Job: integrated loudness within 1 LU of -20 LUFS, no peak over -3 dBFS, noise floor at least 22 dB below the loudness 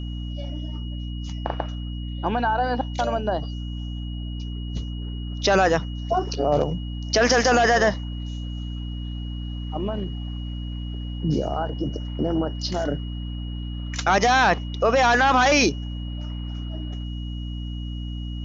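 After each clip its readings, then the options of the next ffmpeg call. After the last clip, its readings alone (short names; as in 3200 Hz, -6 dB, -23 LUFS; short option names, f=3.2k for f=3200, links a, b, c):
hum 60 Hz; harmonics up to 300 Hz; hum level -28 dBFS; steady tone 2900 Hz; tone level -43 dBFS; loudness -24.5 LUFS; peak -6.0 dBFS; loudness target -20.0 LUFS
-> -af "bandreject=f=60:t=h:w=6,bandreject=f=120:t=h:w=6,bandreject=f=180:t=h:w=6,bandreject=f=240:t=h:w=6,bandreject=f=300:t=h:w=6"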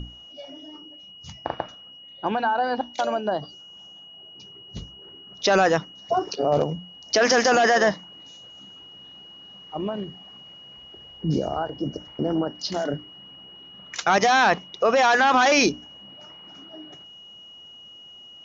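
hum none; steady tone 2900 Hz; tone level -43 dBFS
-> -af "bandreject=f=2.9k:w=30"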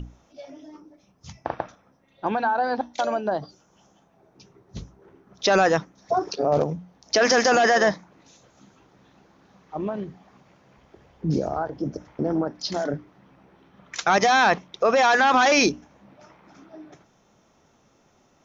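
steady tone none; loudness -22.5 LUFS; peak -7.0 dBFS; loudness target -20.0 LUFS
-> -af "volume=2.5dB"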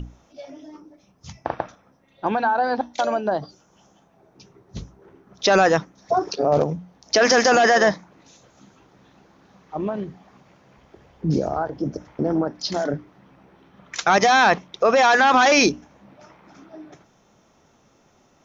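loudness -20.0 LUFS; peak -4.5 dBFS; noise floor -59 dBFS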